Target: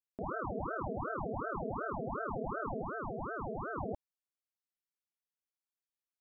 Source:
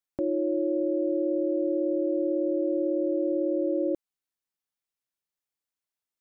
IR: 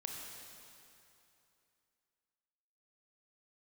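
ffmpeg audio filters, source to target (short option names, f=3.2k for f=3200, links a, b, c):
-filter_complex "[0:a]asettb=1/sr,asplit=3[a][b][c];[a]atrim=end=2.814[d];[b]atrim=start=2.81:end=3.76,asetpts=PTS-STARTPTS,afade=t=in:d=0.004:c=qsin,afade=t=out:st=0.946:d=0.004:c=qsin,bandreject=f=50:t=h:w=6,bandreject=f=100:t=h:w=6,bandreject=f=150:t=h:w=6,bandreject=f=200:t=h:w=6,bandreject=f=250:t=h:w=6,bandreject=f=300:t=h:w=6,bandreject=f=350:t=h:w=6[e];[c]atrim=start=3.756[f];[d][e]acrossfade=d=0.004:c1=hsin:c2=qsin[g];[g][f]acrossfade=d=0.004:c1=qsin:c2=hsin,aeval=exprs='val(0)*sin(2*PI*550*n/s+550*0.85/2.7*sin(2*PI*2.7*n/s))':c=same,volume=-8.5dB"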